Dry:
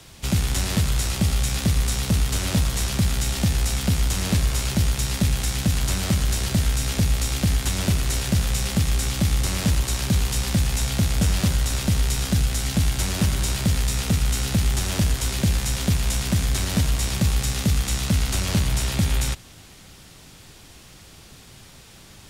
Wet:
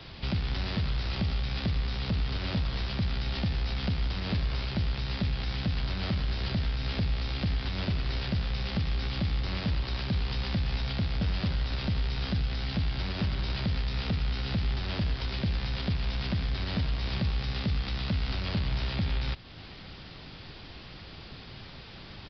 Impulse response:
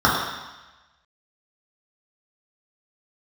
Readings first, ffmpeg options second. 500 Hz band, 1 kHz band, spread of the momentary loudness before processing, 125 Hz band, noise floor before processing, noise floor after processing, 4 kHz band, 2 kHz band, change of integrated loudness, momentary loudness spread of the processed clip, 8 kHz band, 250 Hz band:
-7.0 dB, -6.5 dB, 1 LU, -8.0 dB, -47 dBFS, -46 dBFS, -7.5 dB, -7.0 dB, -8.5 dB, 14 LU, under -30 dB, -8.5 dB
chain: -af "alimiter=limit=-23dB:level=0:latency=1:release=343,aresample=11025,aresample=44100,volume=2dB"

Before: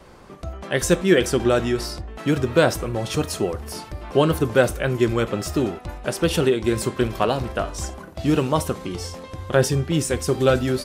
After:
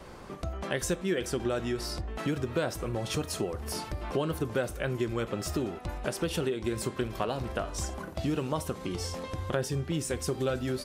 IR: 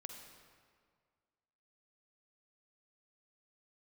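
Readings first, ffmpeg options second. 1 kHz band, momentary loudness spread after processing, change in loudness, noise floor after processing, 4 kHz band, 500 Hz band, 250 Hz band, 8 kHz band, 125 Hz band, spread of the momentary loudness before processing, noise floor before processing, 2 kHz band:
-10.0 dB, 5 LU, -10.5 dB, -43 dBFS, -9.0 dB, -11.0 dB, -10.5 dB, -8.0 dB, -9.5 dB, 13 LU, -41 dBFS, -11.0 dB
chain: -af "acompressor=threshold=-31dB:ratio=3"

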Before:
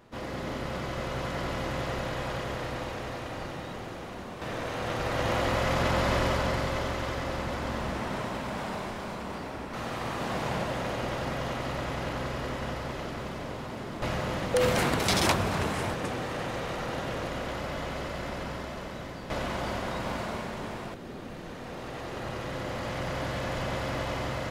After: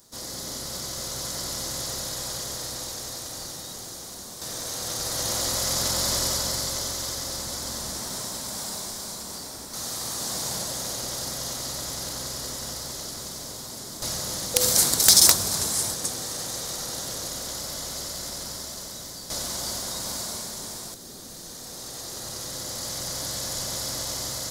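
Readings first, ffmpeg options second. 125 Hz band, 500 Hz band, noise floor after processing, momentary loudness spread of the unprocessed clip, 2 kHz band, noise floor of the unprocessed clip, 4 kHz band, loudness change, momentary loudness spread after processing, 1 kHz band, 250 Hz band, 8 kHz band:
-6.0 dB, -6.0 dB, -40 dBFS, 12 LU, -5.5 dB, -40 dBFS, +10.0 dB, +6.0 dB, 12 LU, -6.0 dB, -6.0 dB, +19.5 dB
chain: -af "aexciter=amount=10.2:drive=8.8:freq=4.1k,aeval=exprs='(mod(0.562*val(0)+1,2)-1)/0.562':c=same,volume=-6dB"

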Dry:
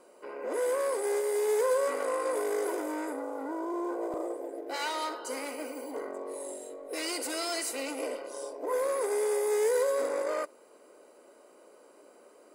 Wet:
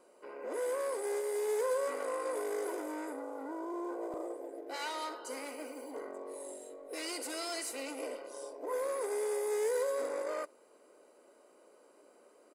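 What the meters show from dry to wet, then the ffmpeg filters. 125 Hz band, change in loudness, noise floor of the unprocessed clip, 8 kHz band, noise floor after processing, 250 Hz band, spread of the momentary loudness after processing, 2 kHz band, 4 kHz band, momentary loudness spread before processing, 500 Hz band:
n/a, -5.5 dB, -57 dBFS, -5.5 dB, -63 dBFS, -5.5 dB, 12 LU, -5.5 dB, -5.5 dB, 12 LU, -5.5 dB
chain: -af "aresample=32000,aresample=44100,volume=-5.5dB"

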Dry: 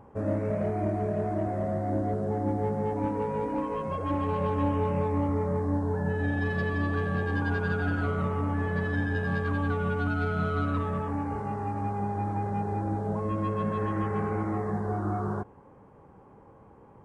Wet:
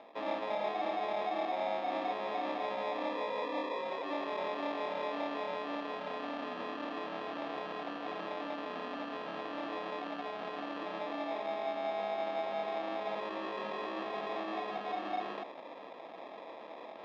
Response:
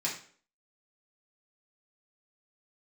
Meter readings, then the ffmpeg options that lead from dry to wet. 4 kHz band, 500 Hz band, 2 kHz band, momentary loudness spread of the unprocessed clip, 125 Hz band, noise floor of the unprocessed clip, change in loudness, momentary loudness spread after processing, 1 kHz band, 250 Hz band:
+6.5 dB, -5.5 dB, -7.5 dB, 3 LU, -32.5 dB, -53 dBFS, -8.0 dB, 6 LU, -3.5 dB, -13.0 dB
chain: -af "areverse,acompressor=mode=upward:threshold=-33dB:ratio=2.5,areverse,acrusher=samples=30:mix=1:aa=0.000001,asoftclip=type=tanh:threshold=-28dB,highpass=f=320:w=0.5412,highpass=f=320:w=1.3066,equalizer=f=400:t=q:w=4:g=-10,equalizer=f=680:t=q:w=4:g=5,equalizer=f=2.1k:t=q:w=4:g=-6,lowpass=f=3.4k:w=0.5412,lowpass=f=3.4k:w=1.3066"

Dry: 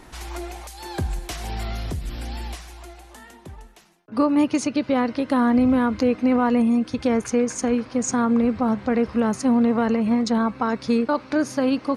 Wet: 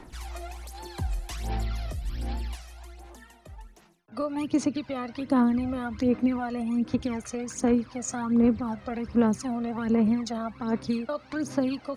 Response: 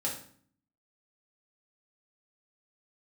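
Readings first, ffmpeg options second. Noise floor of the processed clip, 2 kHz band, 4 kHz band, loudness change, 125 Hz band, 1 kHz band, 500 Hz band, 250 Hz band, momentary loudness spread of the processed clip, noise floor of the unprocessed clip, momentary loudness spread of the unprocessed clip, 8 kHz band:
-53 dBFS, -8.5 dB, -7.0 dB, -6.5 dB, -3.0 dB, -8.5 dB, -7.5 dB, -6.0 dB, 16 LU, -47 dBFS, 14 LU, -6.5 dB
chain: -filter_complex "[0:a]acrossover=split=280|3000[a][b][c];[b]acompressor=threshold=-22dB:ratio=6[d];[a][d][c]amix=inputs=3:normalize=0,aphaser=in_gain=1:out_gain=1:delay=1.6:decay=0.64:speed=1.3:type=sinusoidal,volume=-8.5dB"

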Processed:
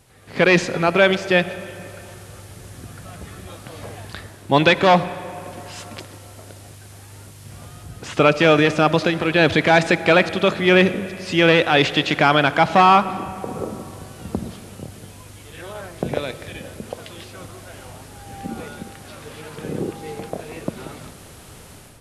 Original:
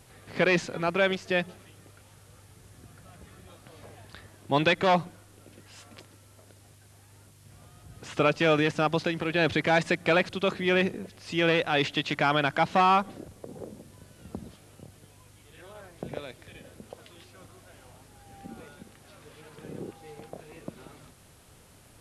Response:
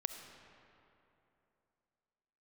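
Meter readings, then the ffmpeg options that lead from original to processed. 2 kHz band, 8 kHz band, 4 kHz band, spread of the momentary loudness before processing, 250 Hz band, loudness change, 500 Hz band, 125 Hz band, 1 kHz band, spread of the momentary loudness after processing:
+9.0 dB, +10.5 dB, +9.5 dB, 21 LU, +9.5 dB, +8.0 dB, +9.5 dB, +9.5 dB, +9.0 dB, 22 LU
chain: -filter_complex "[0:a]dynaudnorm=f=140:g=5:m=13dB,asplit=2[a][b];[1:a]atrim=start_sample=2205[c];[b][c]afir=irnorm=-1:irlink=0,volume=-2dB[d];[a][d]amix=inputs=2:normalize=0,volume=-4.5dB"

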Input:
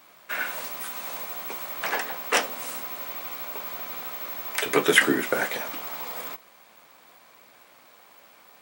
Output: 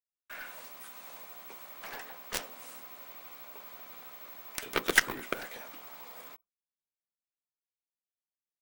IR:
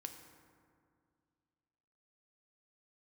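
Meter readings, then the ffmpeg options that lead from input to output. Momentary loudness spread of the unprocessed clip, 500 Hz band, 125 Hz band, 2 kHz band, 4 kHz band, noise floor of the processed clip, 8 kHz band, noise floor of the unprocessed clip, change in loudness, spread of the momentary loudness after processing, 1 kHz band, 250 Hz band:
12 LU, -13.5 dB, -9.5 dB, -8.0 dB, -9.0 dB, under -85 dBFS, -7.0 dB, -55 dBFS, -9.5 dB, 17 LU, -11.0 dB, -13.5 dB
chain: -af "agate=range=-33dB:threshold=-41dB:ratio=3:detection=peak,anlmdn=0.0158,aeval=exprs='0.794*(cos(1*acos(clip(val(0)/0.794,-1,1)))-cos(1*PI/2))+0.0447*(cos(4*acos(clip(val(0)/0.794,-1,1)))-cos(4*PI/2))+0.158*(cos(7*acos(clip(val(0)/0.794,-1,1)))-cos(7*PI/2))':c=same,volume=-4.5dB"

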